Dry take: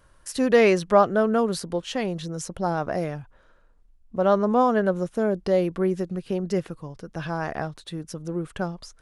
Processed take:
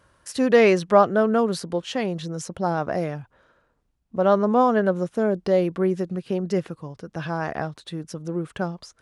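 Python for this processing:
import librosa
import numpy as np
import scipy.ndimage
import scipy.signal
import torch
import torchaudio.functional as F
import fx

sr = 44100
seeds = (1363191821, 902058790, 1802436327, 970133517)

y = scipy.signal.sosfilt(scipy.signal.butter(2, 77.0, 'highpass', fs=sr, output='sos'), x)
y = fx.high_shelf(y, sr, hz=9600.0, db=-7.5)
y = F.gain(torch.from_numpy(y), 1.5).numpy()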